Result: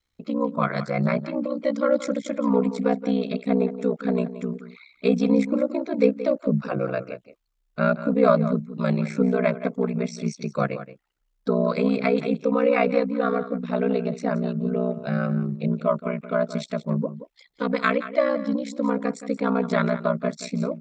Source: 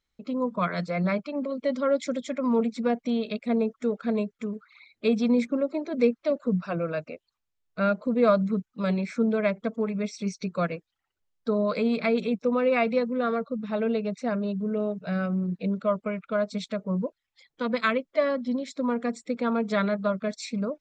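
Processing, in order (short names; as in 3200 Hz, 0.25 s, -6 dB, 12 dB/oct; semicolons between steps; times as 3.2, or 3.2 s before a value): dynamic EQ 3400 Hz, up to -4 dB, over -48 dBFS, Q 1.2; outdoor echo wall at 30 m, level -13 dB; ring modulator 31 Hz; gain +6 dB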